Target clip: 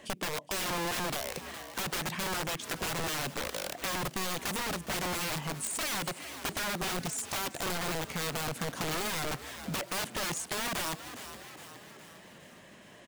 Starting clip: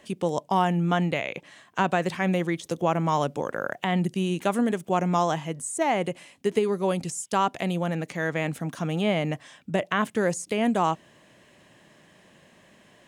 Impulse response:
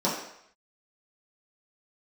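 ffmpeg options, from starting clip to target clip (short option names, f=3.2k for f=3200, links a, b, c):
-filter_complex "[0:a]aeval=exprs='(mod(17.8*val(0)+1,2)-1)/17.8':c=same,asplit=6[a][b][c][d][e][f];[b]adelay=413,afreqshift=62,volume=-17dB[g];[c]adelay=826,afreqshift=124,volume=-22.2dB[h];[d]adelay=1239,afreqshift=186,volume=-27.4dB[i];[e]adelay=1652,afreqshift=248,volume=-32.6dB[j];[f]adelay=2065,afreqshift=310,volume=-37.8dB[k];[a][g][h][i][j][k]amix=inputs=6:normalize=0,acompressor=threshold=-36dB:ratio=2.5,volume=2dB"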